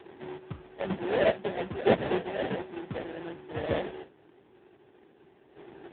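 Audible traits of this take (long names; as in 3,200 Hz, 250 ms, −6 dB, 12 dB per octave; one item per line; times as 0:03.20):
aliases and images of a low sample rate 1,200 Hz, jitter 20%
chopped level 0.54 Hz, depth 65%, duty 20%
AMR narrowband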